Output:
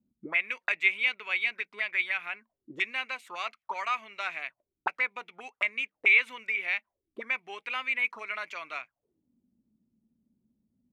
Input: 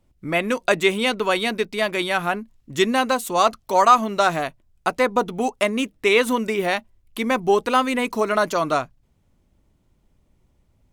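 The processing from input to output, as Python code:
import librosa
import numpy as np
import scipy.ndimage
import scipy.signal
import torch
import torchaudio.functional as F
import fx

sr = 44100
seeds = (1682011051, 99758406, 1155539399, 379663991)

y = fx.auto_wah(x, sr, base_hz=220.0, top_hz=2300.0, q=7.9, full_db=-19.5, direction='up')
y = y * 10.0 ** (4.0 / 20.0)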